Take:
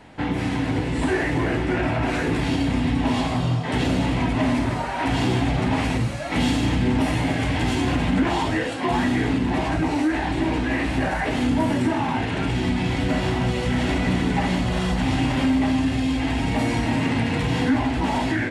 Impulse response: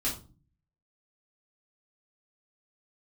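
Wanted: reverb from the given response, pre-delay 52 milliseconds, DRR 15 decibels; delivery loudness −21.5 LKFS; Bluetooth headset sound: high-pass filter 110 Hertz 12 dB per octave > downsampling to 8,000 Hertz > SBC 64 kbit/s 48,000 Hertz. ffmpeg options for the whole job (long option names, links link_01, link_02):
-filter_complex "[0:a]asplit=2[link_01][link_02];[1:a]atrim=start_sample=2205,adelay=52[link_03];[link_02][link_03]afir=irnorm=-1:irlink=0,volume=-20.5dB[link_04];[link_01][link_04]amix=inputs=2:normalize=0,highpass=110,aresample=8000,aresample=44100,volume=1dB" -ar 48000 -c:a sbc -b:a 64k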